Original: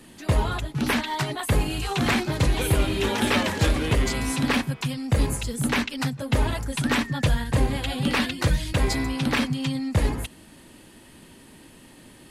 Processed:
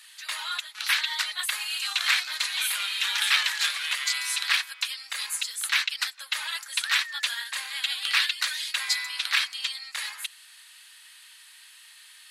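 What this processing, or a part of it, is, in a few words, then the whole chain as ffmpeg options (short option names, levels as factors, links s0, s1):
headphones lying on a table: -af "highpass=f=1400:w=0.5412,highpass=f=1400:w=1.3066,equalizer=f=4000:t=o:w=0.49:g=6,volume=1.33"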